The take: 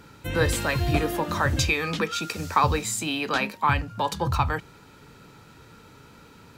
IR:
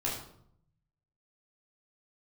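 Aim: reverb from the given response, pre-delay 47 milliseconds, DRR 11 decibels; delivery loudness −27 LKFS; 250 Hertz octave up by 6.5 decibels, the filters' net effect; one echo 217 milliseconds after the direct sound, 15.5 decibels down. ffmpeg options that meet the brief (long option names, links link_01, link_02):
-filter_complex "[0:a]equalizer=frequency=250:width_type=o:gain=9,aecho=1:1:217:0.168,asplit=2[link_01][link_02];[1:a]atrim=start_sample=2205,adelay=47[link_03];[link_02][link_03]afir=irnorm=-1:irlink=0,volume=-16.5dB[link_04];[link_01][link_04]amix=inputs=2:normalize=0,volume=-4dB"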